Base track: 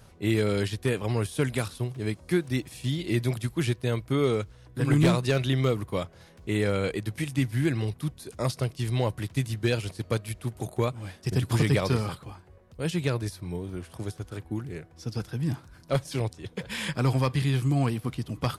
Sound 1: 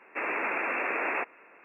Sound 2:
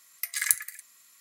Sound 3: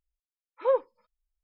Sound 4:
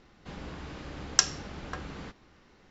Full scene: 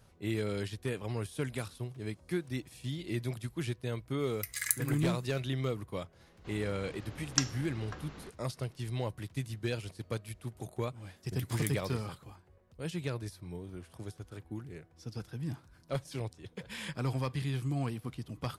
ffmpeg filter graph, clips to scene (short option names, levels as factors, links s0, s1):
-filter_complex "[2:a]asplit=2[s0][s1];[0:a]volume=0.355[s2];[s0]atrim=end=1.2,asetpts=PTS-STARTPTS,volume=0.447,afade=t=in:d=0.004:c=hsin,afade=t=out:st=1.196:d=0.004:c=hsin,adelay=4200[s3];[4:a]atrim=end=2.7,asetpts=PTS-STARTPTS,volume=0.447,afade=t=in:d=0.004:c=hsin,afade=t=out:st=2.696:d=0.004:c=hsin,adelay=6190[s4];[s1]atrim=end=1.2,asetpts=PTS-STARTPTS,volume=0.133,afade=t=in:d=0.004:c=hsin,afade=t=out:st=1.196:d=0.004:c=hsin,adelay=11160[s5];[s2][s3][s4][s5]amix=inputs=4:normalize=0"